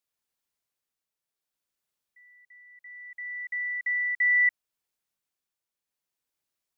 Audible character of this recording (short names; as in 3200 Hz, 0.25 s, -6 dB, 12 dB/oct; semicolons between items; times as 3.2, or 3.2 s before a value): tremolo triangle 0.66 Hz, depth 45%